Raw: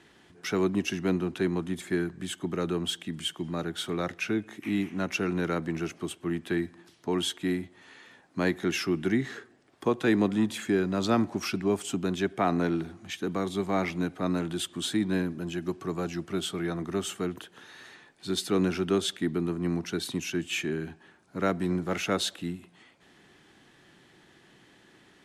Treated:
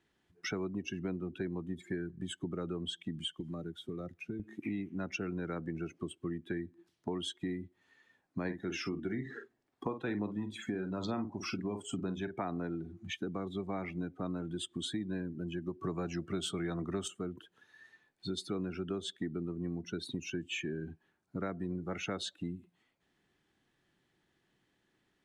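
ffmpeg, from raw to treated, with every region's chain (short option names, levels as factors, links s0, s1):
-filter_complex "[0:a]asettb=1/sr,asplit=3[s0][s1][s2];[s0]atrim=end=3.404[s3];[s1]atrim=start=3.4:end=4.4,asetpts=PTS-STARTPTS,afade=t=in:d=0.004:c=qsin,afade=t=out:st=0.996:d=0.004:c=qsin,acrossover=split=86|570[s4][s5][s6];[s4]acompressor=threshold=0.00158:ratio=4[s7];[s5]acompressor=threshold=0.01:ratio=4[s8];[s6]acompressor=threshold=0.00447:ratio=4[s9];[s7][s8][s9]amix=inputs=3:normalize=0,highshelf=f=6400:g=9[s10];[s2]atrim=start=4.396[s11];[s3][s10]acrossfade=d=0.004:c1=hsin:c2=qsin[s12];[s12][s11]acrossfade=d=0.004:c1=qsin:c2=hsin,asettb=1/sr,asplit=3[s13][s14][s15];[s13]atrim=end=8.454[s16];[s14]atrim=start=8.45:end=12.42,asetpts=PTS-STARTPTS,afade=t=in:d=0.004:c=qsin,afade=t=out:st=3.966:d=0.004:c=qsin,equalizer=f=920:t=o:w=0.42:g=3.5,aphaser=in_gain=1:out_gain=1:delay=4.2:decay=0.23:speed=1.1:type=sinusoidal,asplit=2[s17][s18];[s18]adelay=48,volume=0.398[s19];[s17][s19]amix=inputs=2:normalize=0,atrim=end_sample=175077[s20];[s15]atrim=start=12.416[s21];[s16][s20]acrossfade=d=0.004:c1=hsin:c2=qsin[s22];[s22][s21]acrossfade=d=0.004:c1=qsin:c2=hsin,asettb=1/sr,asplit=3[s23][s24][s25];[s23]atrim=end=15.834[s26];[s24]atrim=start=15.83:end=17.08,asetpts=PTS-STARTPTS,afade=t=in:d=0.004:c=qsin,afade=t=out:st=1.246:d=0.004:c=qsin,highshelf=f=3500:g=3,acontrast=83[s27];[s25]atrim=start=17.076[s28];[s26][s27]acrossfade=d=0.004:c1=hsin:c2=qsin[s29];[s29][s28]acrossfade=d=0.004:c1=qsin:c2=hsin,afftdn=nr=20:nf=-37,lowshelf=f=81:g=9.5,acompressor=threshold=0.0141:ratio=4,volume=1.12"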